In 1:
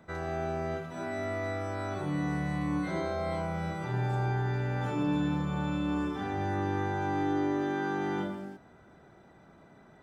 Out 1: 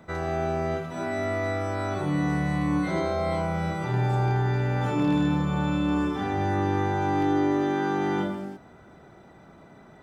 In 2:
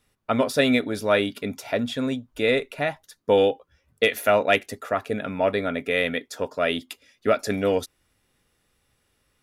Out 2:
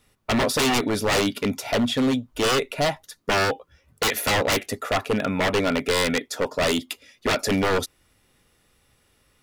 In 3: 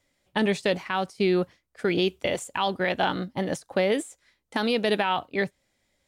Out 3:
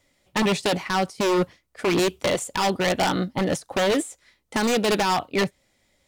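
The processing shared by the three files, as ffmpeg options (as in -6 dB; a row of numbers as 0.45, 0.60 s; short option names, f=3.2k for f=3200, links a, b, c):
-af "aeval=exprs='0.0841*(abs(mod(val(0)/0.0841+3,4)-2)-1)':c=same,bandreject=f=1.6k:w=21,volume=6dB"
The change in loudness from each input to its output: +6.0, +1.0, +3.0 LU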